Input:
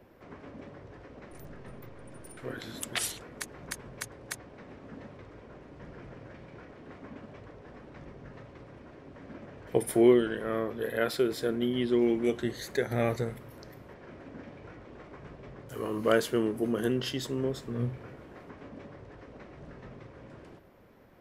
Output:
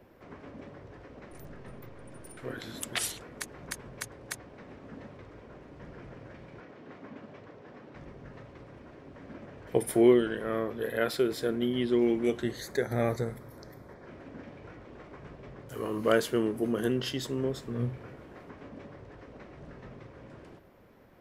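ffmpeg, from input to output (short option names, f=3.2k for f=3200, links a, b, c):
-filter_complex "[0:a]asettb=1/sr,asplit=3[a][b][c];[a]atrim=end=6.604[d];[b]atrim=start=6.6:end=7.95,asetpts=PTS-STARTPTS,afade=t=in:d=0.004:c=qsin,afade=t=out:st=1.346:d=0.004:c=qsin,highpass=130,lowpass=6.9k[e];[c]atrim=start=7.946[f];[d][e]acrossfade=d=0.004:c1=hsin:c2=qsin[g];[g][f]acrossfade=d=0.004:c1=qsin:c2=hsin,asettb=1/sr,asplit=3[h][i][j];[h]atrim=end=12.614[k];[i]atrim=start=12.61:end=14.06,asetpts=PTS-STARTPTS,afade=t=in:d=0.004:c=qsin,afade=t=out:st=1.446:d=0.004:c=qsin,equalizer=f=2.8k:t=o:w=0.32:g=-14.5[l];[j]atrim=start=14.056[m];[k][l]acrossfade=d=0.004:c1=hsin:c2=qsin[n];[n][m]acrossfade=d=0.004:c1=qsin:c2=hsin"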